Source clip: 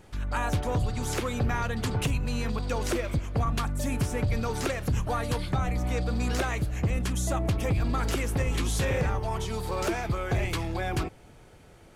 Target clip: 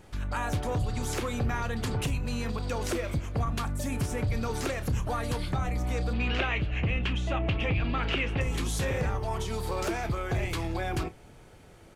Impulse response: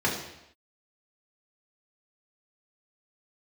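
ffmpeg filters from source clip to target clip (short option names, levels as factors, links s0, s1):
-filter_complex "[0:a]alimiter=limit=0.0708:level=0:latency=1,asettb=1/sr,asplit=3[s0][s1][s2];[s0]atrim=end=6.134[s3];[s1]atrim=start=6.13:end=8.41,asetpts=PTS-STARTPTS,afade=t=in:d=0.004:c=qsin,afade=t=out:st=2.276:d=0.004:c=qsin,lowpass=f=2800:t=q:w=4.1[s4];[s2]atrim=start=8.406[s5];[s3][s4]acrossfade=d=0.004:c1=hsin:c2=qsin[s6];[s6][s5]acrossfade=d=0.004:c1=qsin:c2=hsin,asplit=2[s7][s8];[s8]adelay=30,volume=0.211[s9];[s7][s9]amix=inputs=2:normalize=0"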